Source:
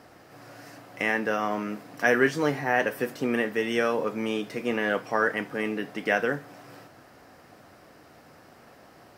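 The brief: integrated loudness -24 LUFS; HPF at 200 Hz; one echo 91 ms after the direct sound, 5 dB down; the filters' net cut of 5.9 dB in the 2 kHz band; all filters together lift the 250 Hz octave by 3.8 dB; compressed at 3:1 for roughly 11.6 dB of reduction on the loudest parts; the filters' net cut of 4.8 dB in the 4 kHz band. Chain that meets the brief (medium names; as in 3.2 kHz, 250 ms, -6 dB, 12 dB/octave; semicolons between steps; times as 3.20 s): high-pass 200 Hz; peaking EQ 250 Hz +6.5 dB; peaking EQ 2 kHz -7 dB; peaking EQ 4 kHz -3.5 dB; compression 3:1, threshold -32 dBFS; delay 91 ms -5 dB; trim +9.5 dB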